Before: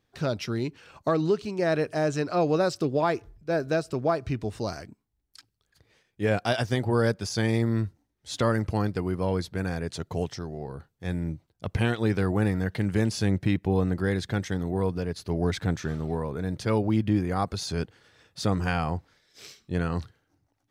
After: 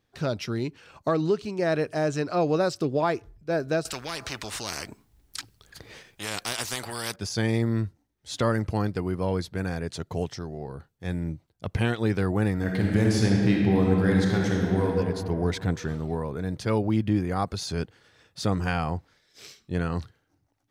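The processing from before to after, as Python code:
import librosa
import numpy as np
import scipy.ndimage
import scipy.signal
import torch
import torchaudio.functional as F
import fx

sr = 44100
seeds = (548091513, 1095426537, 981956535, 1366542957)

y = fx.spectral_comp(x, sr, ratio=4.0, at=(3.85, 7.16))
y = fx.reverb_throw(y, sr, start_s=12.54, length_s=2.34, rt60_s=2.6, drr_db=-1.5)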